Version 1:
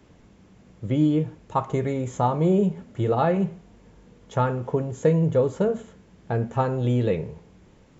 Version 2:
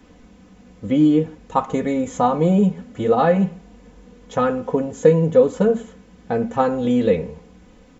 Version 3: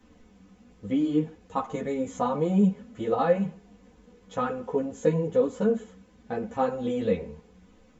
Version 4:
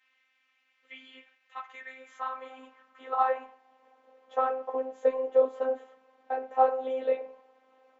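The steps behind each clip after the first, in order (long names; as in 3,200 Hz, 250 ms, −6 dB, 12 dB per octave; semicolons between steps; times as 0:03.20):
comb filter 4 ms, depth 79%; level +3.5 dB
string-ensemble chorus; level −5 dB
band-pass filter 130–2,800 Hz; high-pass filter sweep 2,200 Hz → 650 Hz, 0:01.33–0:04.17; phases set to zero 261 Hz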